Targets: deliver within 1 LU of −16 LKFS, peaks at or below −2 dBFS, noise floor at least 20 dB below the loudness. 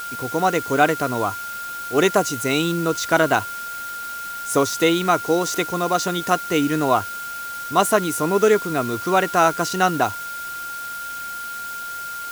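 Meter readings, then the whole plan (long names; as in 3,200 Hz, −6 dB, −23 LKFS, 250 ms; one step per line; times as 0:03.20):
interfering tone 1,400 Hz; level of the tone −29 dBFS; background noise floor −31 dBFS; target noise floor −42 dBFS; integrated loudness −21.5 LKFS; sample peak −2.5 dBFS; target loudness −16.0 LKFS
→ notch filter 1,400 Hz, Q 30
broadband denoise 11 dB, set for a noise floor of −31 dBFS
level +5.5 dB
brickwall limiter −2 dBFS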